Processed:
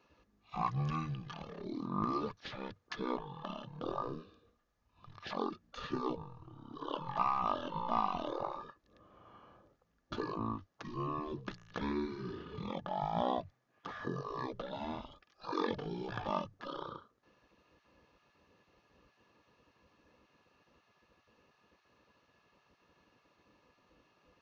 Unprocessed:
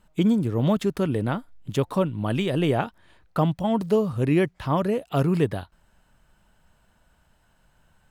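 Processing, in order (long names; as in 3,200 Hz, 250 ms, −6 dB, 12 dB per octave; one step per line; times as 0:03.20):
change of speed 0.332×
gate on every frequency bin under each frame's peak −15 dB weak
hollow resonant body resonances 1,200/1,700 Hz, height 11 dB, ringing for 40 ms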